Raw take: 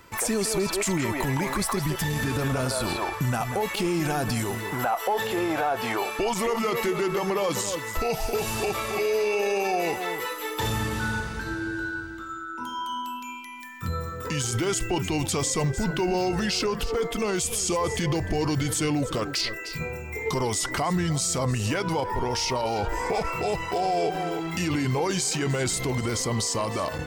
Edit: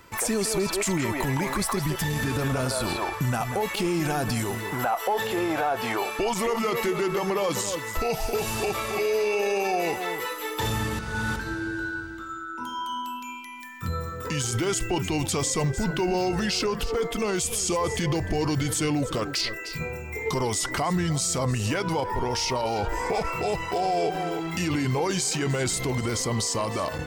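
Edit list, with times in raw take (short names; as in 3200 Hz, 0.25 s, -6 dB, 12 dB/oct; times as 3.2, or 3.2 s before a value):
10.99–11.36 reverse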